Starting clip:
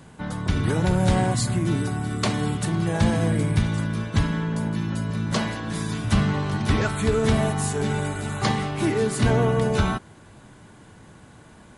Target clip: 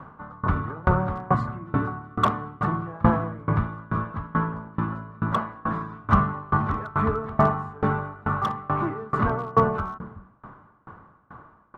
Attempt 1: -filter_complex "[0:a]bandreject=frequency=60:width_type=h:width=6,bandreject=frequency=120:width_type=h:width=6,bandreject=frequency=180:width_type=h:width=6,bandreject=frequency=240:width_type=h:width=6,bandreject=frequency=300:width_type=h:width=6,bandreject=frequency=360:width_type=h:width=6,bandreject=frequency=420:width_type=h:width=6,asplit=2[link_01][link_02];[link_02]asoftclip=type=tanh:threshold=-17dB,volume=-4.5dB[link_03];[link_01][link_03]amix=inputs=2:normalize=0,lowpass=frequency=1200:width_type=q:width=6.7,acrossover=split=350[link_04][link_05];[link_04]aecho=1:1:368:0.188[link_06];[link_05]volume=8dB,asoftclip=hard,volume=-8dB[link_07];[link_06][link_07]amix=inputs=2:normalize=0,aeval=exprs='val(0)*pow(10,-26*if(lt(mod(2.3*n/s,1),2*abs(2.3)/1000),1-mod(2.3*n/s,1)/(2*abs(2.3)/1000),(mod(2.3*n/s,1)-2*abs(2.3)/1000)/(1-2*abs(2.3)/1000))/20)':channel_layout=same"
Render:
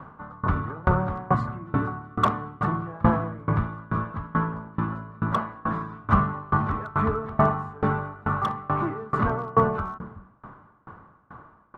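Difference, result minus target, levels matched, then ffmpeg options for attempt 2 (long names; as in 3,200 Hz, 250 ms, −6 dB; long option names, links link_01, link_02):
soft clipping: distortion +15 dB
-filter_complex "[0:a]bandreject=frequency=60:width_type=h:width=6,bandreject=frequency=120:width_type=h:width=6,bandreject=frequency=180:width_type=h:width=6,bandreject=frequency=240:width_type=h:width=6,bandreject=frequency=300:width_type=h:width=6,bandreject=frequency=360:width_type=h:width=6,bandreject=frequency=420:width_type=h:width=6,asplit=2[link_01][link_02];[link_02]asoftclip=type=tanh:threshold=-7.5dB,volume=-4.5dB[link_03];[link_01][link_03]amix=inputs=2:normalize=0,lowpass=frequency=1200:width_type=q:width=6.7,acrossover=split=350[link_04][link_05];[link_04]aecho=1:1:368:0.188[link_06];[link_05]volume=8dB,asoftclip=hard,volume=-8dB[link_07];[link_06][link_07]amix=inputs=2:normalize=0,aeval=exprs='val(0)*pow(10,-26*if(lt(mod(2.3*n/s,1),2*abs(2.3)/1000),1-mod(2.3*n/s,1)/(2*abs(2.3)/1000),(mod(2.3*n/s,1)-2*abs(2.3)/1000)/(1-2*abs(2.3)/1000))/20)':channel_layout=same"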